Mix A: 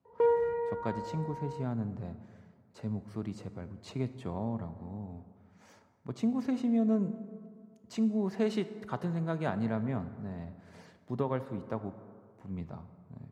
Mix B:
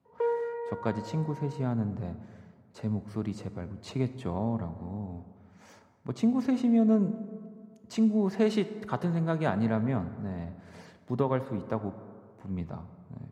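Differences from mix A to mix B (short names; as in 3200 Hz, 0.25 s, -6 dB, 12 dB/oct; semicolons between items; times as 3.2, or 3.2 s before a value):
speech +4.5 dB; background: add rippled Chebyshev high-pass 400 Hz, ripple 3 dB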